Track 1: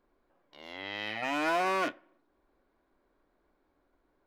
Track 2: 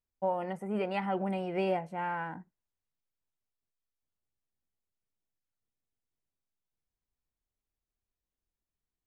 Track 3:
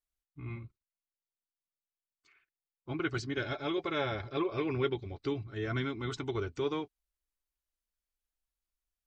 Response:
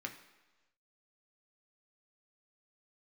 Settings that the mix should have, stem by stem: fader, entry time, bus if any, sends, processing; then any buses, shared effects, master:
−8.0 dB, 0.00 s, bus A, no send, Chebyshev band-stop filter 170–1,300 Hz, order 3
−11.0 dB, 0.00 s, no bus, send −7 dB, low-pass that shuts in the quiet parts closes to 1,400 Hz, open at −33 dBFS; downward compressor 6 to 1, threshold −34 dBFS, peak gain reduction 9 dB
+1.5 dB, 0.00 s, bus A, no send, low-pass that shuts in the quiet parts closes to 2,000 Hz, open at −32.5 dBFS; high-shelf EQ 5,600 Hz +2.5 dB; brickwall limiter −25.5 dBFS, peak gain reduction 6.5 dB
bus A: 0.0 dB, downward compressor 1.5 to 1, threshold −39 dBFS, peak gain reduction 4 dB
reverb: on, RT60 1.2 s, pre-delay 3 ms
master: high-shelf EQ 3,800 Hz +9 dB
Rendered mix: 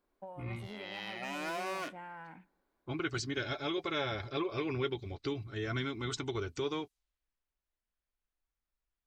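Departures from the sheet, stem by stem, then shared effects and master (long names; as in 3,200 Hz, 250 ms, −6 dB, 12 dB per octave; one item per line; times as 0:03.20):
stem 1: missing Chebyshev band-stop filter 170–1,300 Hz, order 3
stem 2: send −7 dB → −13 dB
stem 3: missing brickwall limiter −25.5 dBFS, peak gain reduction 6.5 dB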